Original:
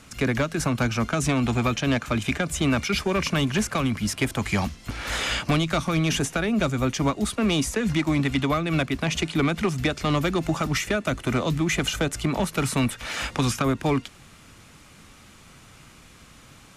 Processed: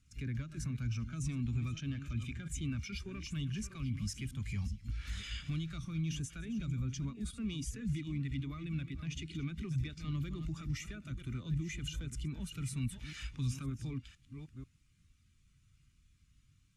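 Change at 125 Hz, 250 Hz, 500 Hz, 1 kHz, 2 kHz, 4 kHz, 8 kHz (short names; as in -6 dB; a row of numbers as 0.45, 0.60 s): -10.0, -16.0, -28.0, -29.0, -21.5, -18.5, -16.5 dB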